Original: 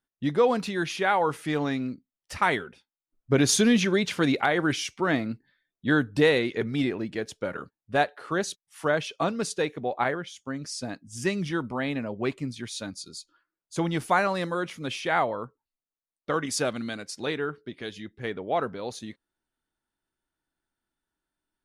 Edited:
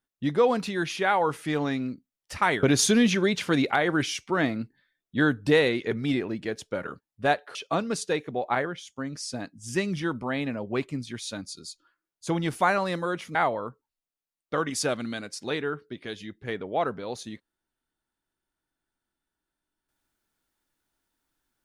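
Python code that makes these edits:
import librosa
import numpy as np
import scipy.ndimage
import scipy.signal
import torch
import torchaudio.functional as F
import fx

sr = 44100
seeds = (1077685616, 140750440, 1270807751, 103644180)

y = fx.edit(x, sr, fx.cut(start_s=2.63, length_s=0.7),
    fx.cut(start_s=8.25, length_s=0.79),
    fx.cut(start_s=14.84, length_s=0.27), tone=tone)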